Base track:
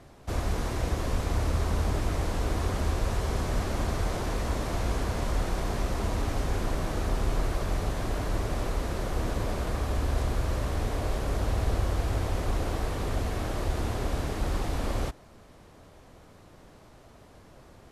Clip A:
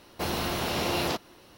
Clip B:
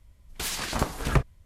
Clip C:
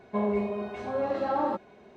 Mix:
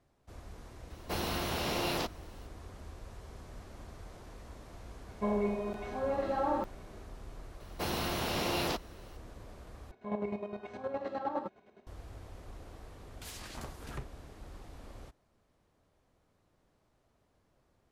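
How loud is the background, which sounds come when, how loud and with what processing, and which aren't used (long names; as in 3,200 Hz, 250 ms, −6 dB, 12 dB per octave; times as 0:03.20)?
base track −20 dB
0:00.90: mix in A −5 dB
0:05.08: mix in C −4 dB + regular buffer underruns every 0.91 s zero
0:07.60: mix in A −4.5 dB
0:09.91: overwrite with C −5 dB + square-wave tremolo 9.7 Hz, depth 60%, duty 35%
0:12.82: mix in B −15 dB + soft clipping −19 dBFS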